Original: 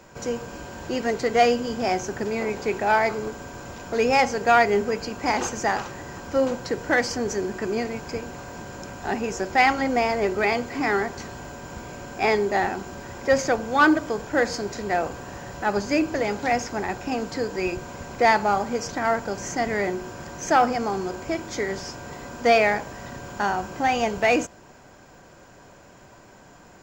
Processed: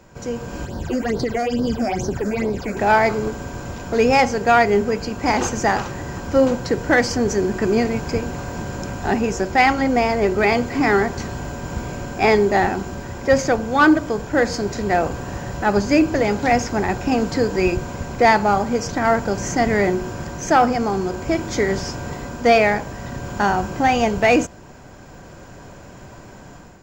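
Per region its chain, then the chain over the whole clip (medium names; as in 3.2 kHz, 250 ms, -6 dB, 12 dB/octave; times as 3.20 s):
0.65–2.77 s: phase shifter stages 8, 2.3 Hz, lowest notch 110–2500 Hz + compression 10:1, threshold -25 dBFS
whole clip: bass shelf 240 Hz +8.5 dB; level rider gain up to 8.5 dB; trim -2.5 dB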